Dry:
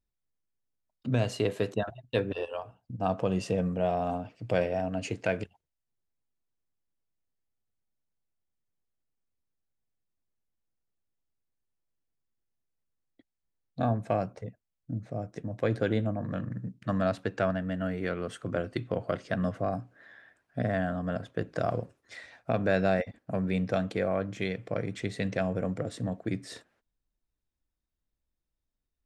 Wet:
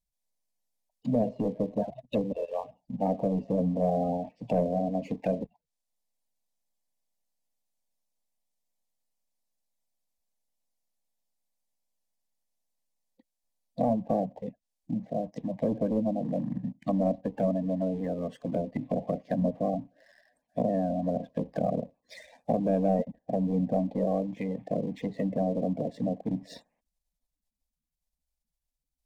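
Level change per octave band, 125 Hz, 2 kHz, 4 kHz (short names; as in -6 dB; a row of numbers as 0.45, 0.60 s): -1.5 dB, under -15 dB, under -10 dB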